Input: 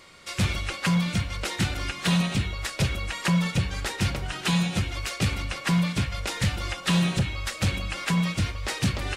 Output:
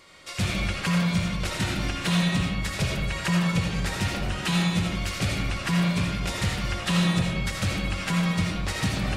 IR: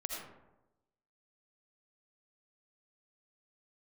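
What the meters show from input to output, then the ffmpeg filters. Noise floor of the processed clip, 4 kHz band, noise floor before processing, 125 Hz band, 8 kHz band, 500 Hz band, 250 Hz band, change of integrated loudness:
-34 dBFS, +0.5 dB, -39 dBFS, 0.0 dB, -0.5 dB, +2.0 dB, +1.0 dB, +0.5 dB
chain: -filter_complex "[1:a]atrim=start_sample=2205[a];[0:a][a]afir=irnorm=-1:irlink=0"

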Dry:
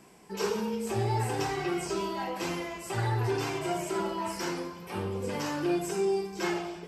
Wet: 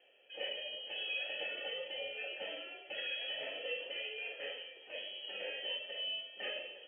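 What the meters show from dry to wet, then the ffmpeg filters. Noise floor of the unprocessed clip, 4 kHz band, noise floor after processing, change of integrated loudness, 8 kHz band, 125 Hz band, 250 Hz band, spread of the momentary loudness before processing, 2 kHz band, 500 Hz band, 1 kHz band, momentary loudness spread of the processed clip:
-45 dBFS, +3.5 dB, -56 dBFS, -8.5 dB, under -40 dB, under -40 dB, -30.5 dB, 6 LU, -2.5 dB, -14.0 dB, -22.5 dB, 6 LU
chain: -filter_complex "[0:a]bandreject=f=960:w=25,aexciter=amount=2.7:drive=9.9:freq=2.5k,lowpass=f=2.9k:t=q:w=0.5098,lowpass=f=2.9k:t=q:w=0.6013,lowpass=f=2.9k:t=q:w=0.9,lowpass=f=2.9k:t=q:w=2.563,afreqshift=-3400,asplit=3[a][b][c];[a]bandpass=f=530:t=q:w=8,volume=0dB[d];[b]bandpass=f=1.84k:t=q:w=8,volume=-6dB[e];[c]bandpass=f=2.48k:t=q:w=8,volume=-9dB[f];[d][e][f]amix=inputs=3:normalize=0,volume=1.5dB"

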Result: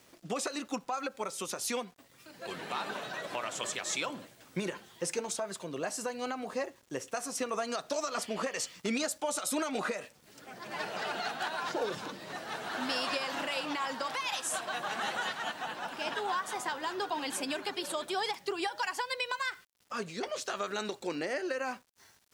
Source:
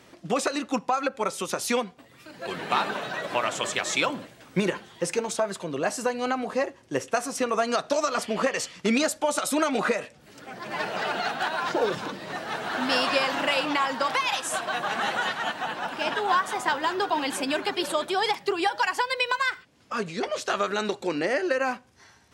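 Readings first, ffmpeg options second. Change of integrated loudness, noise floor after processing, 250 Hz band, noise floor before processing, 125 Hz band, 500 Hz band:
-8.5 dB, -63 dBFS, -9.0 dB, -55 dBFS, -9.5 dB, -9.0 dB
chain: -af "alimiter=limit=-15.5dB:level=0:latency=1:release=138,aeval=exprs='val(0)*gte(abs(val(0)),0.002)':c=same,bass=f=250:g=-1,treble=f=4k:g=5,volume=-7.5dB"

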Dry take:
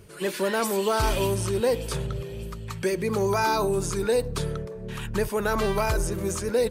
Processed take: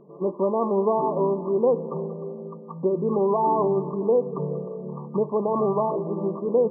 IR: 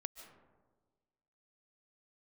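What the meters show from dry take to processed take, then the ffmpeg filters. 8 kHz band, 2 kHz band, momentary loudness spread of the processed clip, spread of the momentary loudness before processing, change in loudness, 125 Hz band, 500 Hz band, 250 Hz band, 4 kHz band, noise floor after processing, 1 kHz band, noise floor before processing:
under -40 dB, under -40 dB, 11 LU, 10 LU, +2.0 dB, -3.5 dB, +3.0 dB, +3.0 dB, under -40 dB, -42 dBFS, +2.5 dB, -37 dBFS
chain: -filter_complex "[0:a]asplit=2[a][b];[1:a]atrim=start_sample=2205,asetrate=27783,aresample=44100[c];[b][c]afir=irnorm=-1:irlink=0,volume=-6dB[d];[a][d]amix=inputs=2:normalize=0,afftfilt=real='re*between(b*sr/4096,140,1200)':imag='im*between(b*sr/4096,140,1200)':win_size=4096:overlap=0.75"

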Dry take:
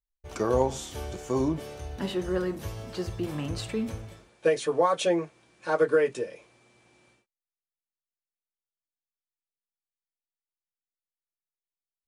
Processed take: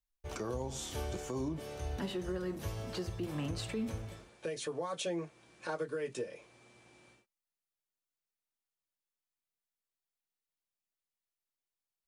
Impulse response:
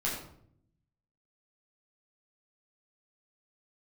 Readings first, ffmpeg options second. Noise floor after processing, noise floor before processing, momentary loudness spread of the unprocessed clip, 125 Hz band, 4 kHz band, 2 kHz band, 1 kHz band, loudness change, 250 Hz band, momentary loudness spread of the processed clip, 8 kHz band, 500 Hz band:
under -85 dBFS, under -85 dBFS, 14 LU, -5.0 dB, -5.5 dB, -10.0 dB, -13.0 dB, -10.5 dB, -8.5 dB, 7 LU, -4.5 dB, -12.5 dB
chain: -filter_complex "[0:a]acrossover=split=240|3000[a][b][c];[b]acompressor=threshold=-29dB:ratio=6[d];[a][d][c]amix=inputs=3:normalize=0,alimiter=level_in=4dB:limit=-24dB:level=0:latency=1:release=409,volume=-4dB"

